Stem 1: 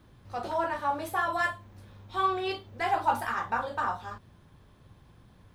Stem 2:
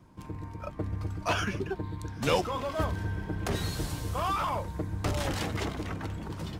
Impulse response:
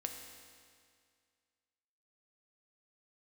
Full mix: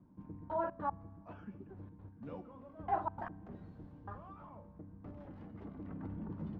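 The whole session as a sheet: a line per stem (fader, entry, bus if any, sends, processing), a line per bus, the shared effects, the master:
-6.0 dB, 0.00 s, send -17 dB, trance gate ".....xx.x..." 151 bpm -60 dB
-2.0 dB, 0.00 s, send -21.5 dB, peaking EQ 210 Hz +12 dB 1 oct; feedback comb 290 Hz, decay 0.7 s, mix 70%; auto duck -14 dB, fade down 1.25 s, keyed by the first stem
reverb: on, RT60 2.1 s, pre-delay 4 ms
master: low-pass 1.2 kHz 12 dB/octave

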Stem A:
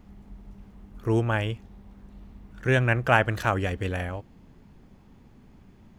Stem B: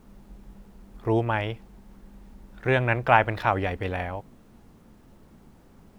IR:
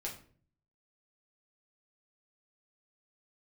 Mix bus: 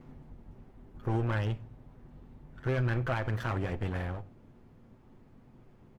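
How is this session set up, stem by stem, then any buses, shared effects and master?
+3.0 dB, 0.00 s, send -17.5 dB, comb filter that takes the minimum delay 8 ms; auto duck -8 dB, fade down 0.30 s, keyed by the second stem
-10.0 dB, 1 ms, no send, none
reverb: on, RT60 0.45 s, pre-delay 6 ms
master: treble shelf 2.8 kHz -10.5 dB; peak limiter -22 dBFS, peak gain reduction 10 dB

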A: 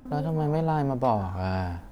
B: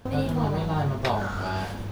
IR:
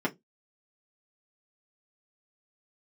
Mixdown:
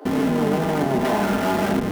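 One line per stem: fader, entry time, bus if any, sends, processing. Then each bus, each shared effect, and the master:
-4.0 dB, 0.00 s, send -5 dB, spectral blur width 283 ms; steep high-pass 290 Hz 96 dB/octave
-1.5 dB, 0.00 s, send -3.5 dB, peak limiter -20.5 dBFS, peak gain reduction 8 dB; Schmitt trigger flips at -39 dBFS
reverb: on, RT60 0.15 s, pre-delay 3 ms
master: gain riding

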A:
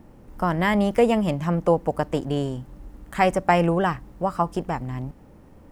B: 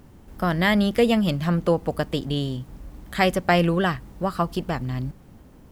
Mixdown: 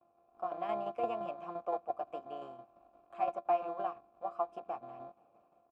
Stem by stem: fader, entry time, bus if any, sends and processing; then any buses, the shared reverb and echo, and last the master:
-9.0 dB, 0.00 s, no send, high-pass 90 Hz 24 dB/octave; level rider gain up to 9 dB
-5.0 dB, 7.5 ms, no send, sorted samples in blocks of 128 samples; boxcar filter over 16 samples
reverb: none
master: gate with hold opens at -47 dBFS; vowel filter a; tremolo saw down 5.8 Hz, depth 55%

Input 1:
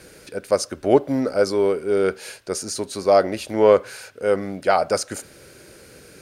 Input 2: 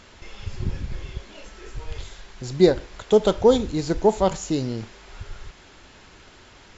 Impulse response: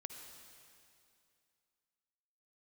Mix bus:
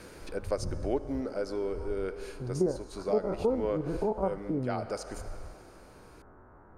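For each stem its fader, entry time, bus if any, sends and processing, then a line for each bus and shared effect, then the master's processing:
-4.0 dB, 0.00 s, send -11 dB, peaking EQ 310 Hz +3 dB; auto duck -13 dB, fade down 1.45 s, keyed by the second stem
-2.0 dB, 0.00 s, no send, spectrogram pixelated in time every 50 ms; steep low-pass 1.4 kHz 36 dB/octave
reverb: on, RT60 2.5 s, pre-delay 48 ms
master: treble shelf 6.6 kHz -6 dB; compression 2:1, threshold -31 dBFS, peak gain reduction 10 dB

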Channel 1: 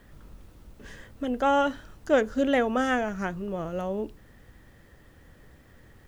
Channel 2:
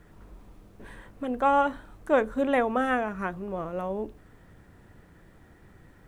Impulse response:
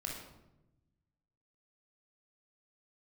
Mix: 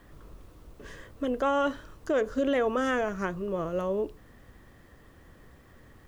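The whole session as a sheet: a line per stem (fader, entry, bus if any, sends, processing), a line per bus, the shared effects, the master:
-1.0 dB, 0.00 s, no send, peaking EQ 1.1 kHz +7 dB 0.29 oct
-4.0 dB, 0.00 s, no send, elliptic band-pass 230–740 Hz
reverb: none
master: peak limiter -18.5 dBFS, peak gain reduction 9.5 dB

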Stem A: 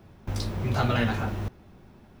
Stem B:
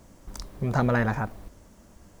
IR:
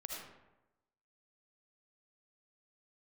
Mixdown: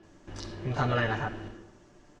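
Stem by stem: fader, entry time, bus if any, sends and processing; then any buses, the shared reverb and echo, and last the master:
-7.0 dB, 0.00 s, send -4 dB, small resonant body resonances 330/1700/2900 Hz, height 13 dB, ringing for 35 ms; auto duck -10 dB, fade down 0.25 s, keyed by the second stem
-4.0 dB, 30 ms, polarity flipped, no send, treble shelf 7.1 kHz -5.5 dB; comb 6.8 ms, depth 81%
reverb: on, RT60 1.0 s, pre-delay 35 ms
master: low-pass 7.3 kHz 24 dB/octave; bass shelf 420 Hz -6 dB

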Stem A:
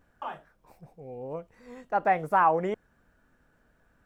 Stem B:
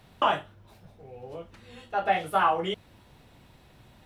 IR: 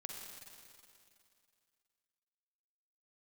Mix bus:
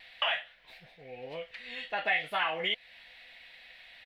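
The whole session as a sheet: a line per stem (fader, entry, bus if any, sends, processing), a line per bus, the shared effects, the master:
-7.0 dB, 0.00 s, no send, peaking EQ 130 Hz -2.5 dB 1.9 oct
+0.5 dB, 1.5 ms, no send, rippled Chebyshev high-pass 490 Hz, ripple 9 dB; high-order bell 2.9 kHz +15.5 dB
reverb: none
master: compression 2:1, threshold -32 dBFS, peak gain reduction 9.5 dB

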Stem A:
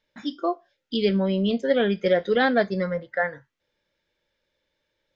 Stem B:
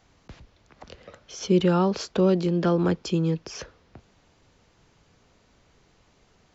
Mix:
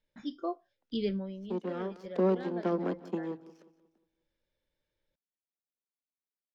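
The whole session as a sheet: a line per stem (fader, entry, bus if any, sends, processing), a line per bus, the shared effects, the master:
-12.0 dB, 0.00 s, no send, no echo send, treble shelf 3.3 kHz +8.5 dB; auto duck -14 dB, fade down 0.40 s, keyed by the second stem
1.58 s -14.5 dB -> 2.11 s -4.5 dB, 0.00 s, no send, echo send -17 dB, power-law waveshaper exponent 2; steep high-pass 200 Hz 48 dB/octave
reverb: none
echo: feedback delay 179 ms, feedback 40%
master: tilt EQ -2.5 dB/octave

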